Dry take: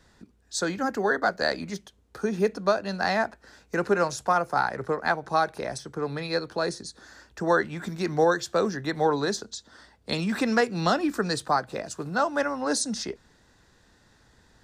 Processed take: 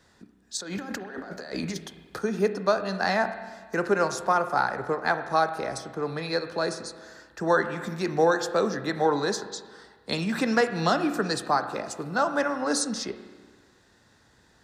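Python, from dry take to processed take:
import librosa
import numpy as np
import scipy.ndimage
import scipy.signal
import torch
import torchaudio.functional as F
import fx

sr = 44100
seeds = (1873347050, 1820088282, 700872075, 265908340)

y = fx.highpass(x, sr, hz=110.0, slope=6)
y = fx.over_compress(y, sr, threshold_db=-36.0, ratio=-1.0, at=(0.57, 2.19))
y = fx.rev_spring(y, sr, rt60_s=1.5, pass_ms=(31, 48), chirp_ms=35, drr_db=9.5)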